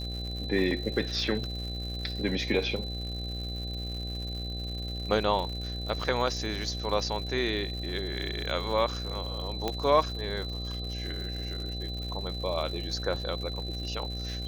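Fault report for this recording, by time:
buzz 60 Hz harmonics 13 -36 dBFS
crackle 170/s -37 dBFS
tone 4000 Hz -38 dBFS
9.68 pop -15 dBFS

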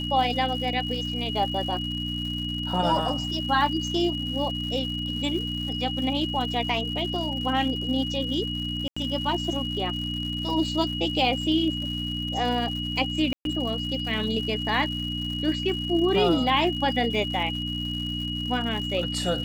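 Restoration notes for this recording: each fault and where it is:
crackle 200/s -35 dBFS
hum 60 Hz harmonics 5 -32 dBFS
tone 2900 Hz -31 dBFS
8.88–8.96 gap 85 ms
13.33–13.45 gap 0.122 s

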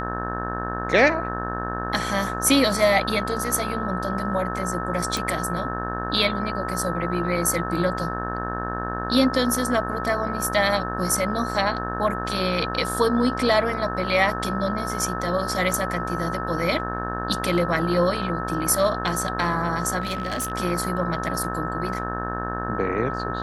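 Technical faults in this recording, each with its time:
buzz 60 Hz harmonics 30 -30 dBFS
tone 1300 Hz -30 dBFS
5.17 pop
20–20.52 clipped -22.5 dBFS

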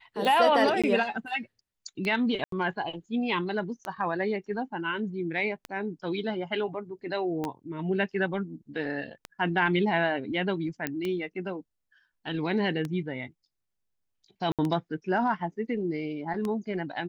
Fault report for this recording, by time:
tick 33 1/3 rpm -19 dBFS
0.82–0.84 gap 16 ms
2.44–2.52 gap 83 ms
7.44 pop -19 dBFS
10.87 pop -14 dBFS
14.52–14.59 gap 67 ms

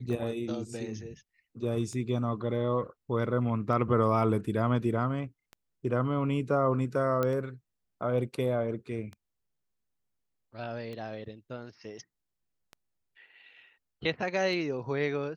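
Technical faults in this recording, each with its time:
tick 33 1/3 rpm
7.23 pop -16 dBFS

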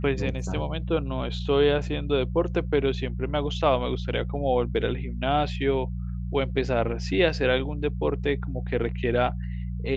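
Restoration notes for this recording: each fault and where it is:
hum 60 Hz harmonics 3 -31 dBFS

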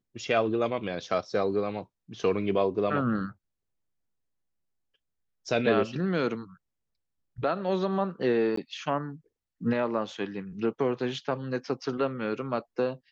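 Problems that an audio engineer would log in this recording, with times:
8.56–8.57 gap 14 ms

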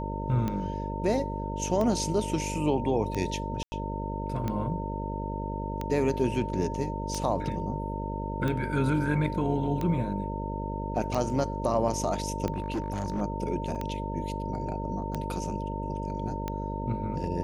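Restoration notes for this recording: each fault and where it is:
buzz 50 Hz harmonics 12 -34 dBFS
tick 45 rpm -18 dBFS
tone 910 Hz -36 dBFS
3.63–3.72 gap 90 ms
12.52–13.22 clipped -25.5 dBFS
13.75 gap 3.9 ms

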